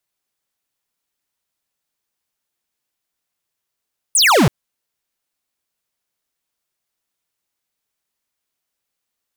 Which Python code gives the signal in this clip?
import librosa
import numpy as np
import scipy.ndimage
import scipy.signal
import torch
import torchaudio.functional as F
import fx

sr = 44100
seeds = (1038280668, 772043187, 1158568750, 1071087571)

y = fx.laser_zap(sr, level_db=-11.5, start_hz=10000.0, end_hz=110.0, length_s=0.33, wave='square')